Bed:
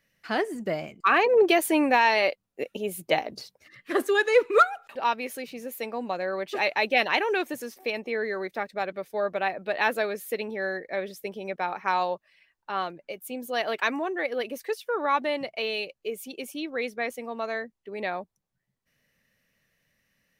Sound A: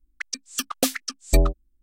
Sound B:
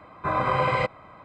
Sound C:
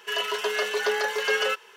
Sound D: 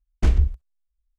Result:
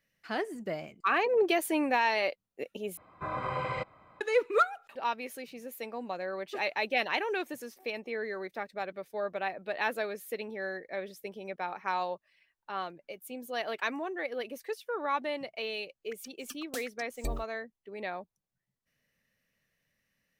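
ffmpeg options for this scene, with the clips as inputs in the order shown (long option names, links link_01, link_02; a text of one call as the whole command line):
ffmpeg -i bed.wav -i cue0.wav -i cue1.wav -filter_complex "[0:a]volume=-6.5dB[link_01];[1:a]acrusher=bits=7:mix=0:aa=0.000001[link_02];[link_01]asplit=2[link_03][link_04];[link_03]atrim=end=2.974[link_05];[2:a]atrim=end=1.24,asetpts=PTS-STARTPTS,volume=-10.5dB[link_06];[link_04]atrim=start=4.206[link_07];[link_02]atrim=end=1.82,asetpts=PTS-STARTPTS,volume=-17.5dB,afade=type=in:duration=0.004:curve=hsin,afade=type=out:start_time=1.816:duration=0.004:curve=hsin,adelay=15910[link_08];[link_05][link_06]acrossfade=duration=0.004:curve1=hsin:curve2=hsin[link_09];[link_09][link_07]acrossfade=duration=0.004:curve1=hsin:curve2=hsin[link_10];[link_10][link_08]amix=inputs=2:normalize=0" out.wav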